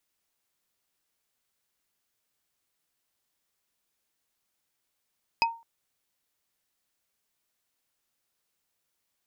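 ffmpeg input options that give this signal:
-f lavfi -i "aevalsrc='0.119*pow(10,-3*t/0.33)*sin(2*PI*921*t)+0.112*pow(10,-3*t/0.098)*sin(2*PI*2539.2*t)+0.106*pow(10,-3*t/0.044)*sin(2*PI*4977.1*t)':d=0.21:s=44100"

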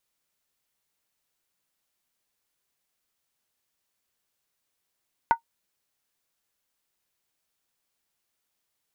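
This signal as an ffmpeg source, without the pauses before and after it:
-f lavfi -i "aevalsrc='0.282*pow(10,-3*t/0.1)*sin(2*PI*923*t)+0.0891*pow(10,-3*t/0.079)*sin(2*PI*1471.3*t)+0.0282*pow(10,-3*t/0.068)*sin(2*PI*1971.5*t)+0.00891*pow(10,-3*t/0.066)*sin(2*PI*2119.2*t)+0.00282*pow(10,-3*t/0.061)*sin(2*PI*2448.7*t)':d=0.63:s=44100"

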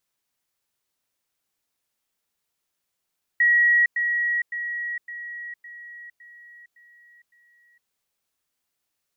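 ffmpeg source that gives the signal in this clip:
-f lavfi -i "aevalsrc='pow(10,(-14.5-6*floor(t/0.56))/20)*sin(2*PI*1910*t)*clip(min(mod(t,0.56),0.46-mod(t,0.56))/0.005,0,1)':d=4.48:s=44100"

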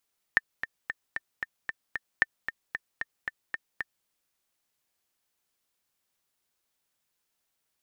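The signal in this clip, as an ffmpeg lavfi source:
-f lavfi -i "aevalsrc='pow(10,(-7.5-10.5*gte(mod(t,7*60/227),60/227))/20)*sin(2*PI*1800*mod(t,60/227))*exp(-6.91*mod(t,60/227)/0.03)':d=3.7:s=44100"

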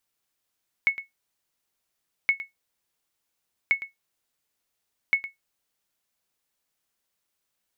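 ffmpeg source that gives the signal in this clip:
-f lavfi -i "aevalsrc='0.251*(sin(2*PI*2200*mod(t,1.42))*exp(-6.91*mod(t,1.42)/0.15)+0.188*sin(2*PI*2200*max(mod(t,1.42)-0.11,0))*exp(-6.91*max(mod(t,1.42)-0.11,0)/0.15))':d=5.68:s=44100"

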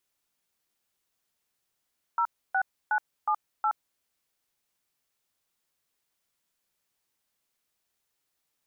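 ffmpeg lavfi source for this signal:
-f lavfi -i "aevalsrc='0.0562*clip(min(mod(t,0.365),0.072-mod(t,0.365))/0.002,0,1)*(eq(floor(t/0.365),0)*(sin(2*PI*941*mod(t,0.365))+sin(2*PI*1336*mod(t,0.365)))+eq(floor(t/0.365),1)*(sin(2*PI*770*mod(t,0.365))+sin(2*PI*1477*mod(t,0.365)))+eq(floor(t/0.365),2)*(sin(2*PI*852*mod(t,0.365))+sin(2*PI*1477*mod(t,0.365)))+eq(floor(t/0.365),3)*(sin(2*PI*852*mod(t,0.365))+sin(2*PI*1209*mod(t,0.365)))+eq(floor(t/0.365),4)*(sin(2*PI*852*mod(t,0.365))+sin(2*PI*1336*mod(t,0.365))))':d=1.825:s=44100"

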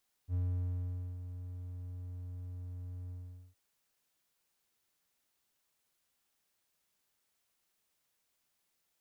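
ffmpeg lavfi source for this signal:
-f lavfi -i "aevalsrc='0.0422*(1-4*abs(mod(89.8*t+0.25,1)-0.5))':d=3.266:s=44100,afade=t=in:d=0.059,afade=t=out:st=0.059:d=0.832:silence=0.282,afade=t=out:st=2.82:d=0.446"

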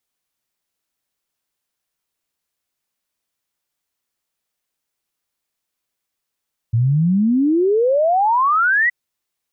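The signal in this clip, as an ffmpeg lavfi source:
-f lavfi -i "aevalsrc='0.237*clip(min(t,2.17-t)/0.01,0,1)*sin(2*PI*110*2.17/log(2000/110)*(exp(log(2000/110)*t/2.17)-1))':d=2.17:s=44100"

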